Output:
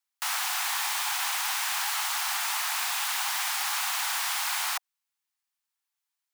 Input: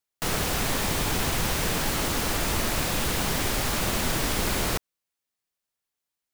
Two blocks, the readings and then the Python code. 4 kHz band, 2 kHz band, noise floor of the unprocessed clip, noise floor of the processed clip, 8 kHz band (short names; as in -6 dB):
0.0 dB, 0.0 dB, under -85 dBFS, under -85 dBFS, 0.0 dB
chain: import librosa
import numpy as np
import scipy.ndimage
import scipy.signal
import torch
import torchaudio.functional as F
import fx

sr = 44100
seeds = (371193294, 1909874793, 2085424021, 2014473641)

y = scipy.signal.sosfilt(scipy.signal.butter(12, 760.0, 'highpass', fs=sr, output='sos'), x)